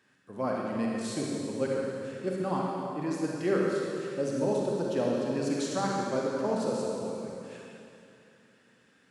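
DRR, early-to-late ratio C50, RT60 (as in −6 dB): −3.0 dB, −2.0 dB, 2.7 s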